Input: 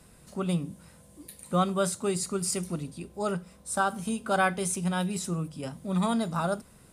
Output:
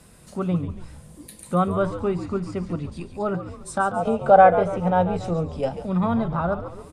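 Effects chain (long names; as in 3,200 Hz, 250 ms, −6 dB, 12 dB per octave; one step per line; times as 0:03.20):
treble cut that deepens with the level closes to 1,700 Hz, closed at −26.5 dBFS
echo with shifted repeats 140 ms, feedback 52%, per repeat −83 Hz, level −10.5 dB
gain on a spectral selection 0:03.96–0:05.86, 430–910 Hz +11 dB
level +4.5 dB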